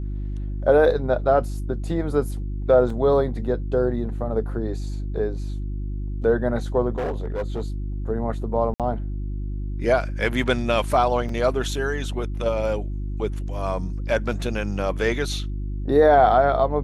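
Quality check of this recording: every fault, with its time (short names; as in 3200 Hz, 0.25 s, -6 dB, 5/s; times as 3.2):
hum 50 Hz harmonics 7 -28 dBFS
2.9 gap 3.2 ms
6.96–7.62 clipped -22 dBFS
8.74–8.8 gap 57 ms
11.29 gap 3.2 ms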